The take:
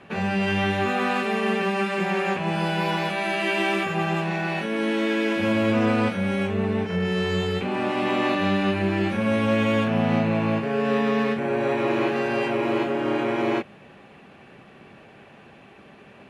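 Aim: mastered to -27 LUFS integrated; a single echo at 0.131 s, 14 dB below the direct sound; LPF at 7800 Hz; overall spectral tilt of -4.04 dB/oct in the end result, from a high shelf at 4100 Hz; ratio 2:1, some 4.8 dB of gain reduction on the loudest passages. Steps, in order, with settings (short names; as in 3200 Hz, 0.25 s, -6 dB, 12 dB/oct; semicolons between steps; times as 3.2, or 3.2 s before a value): LPF 7800 Hz; high shelf 4100 Hz +5.5 dB; compressor 2:1, threshold -26 dBFS; echo 0.131 s -14 dB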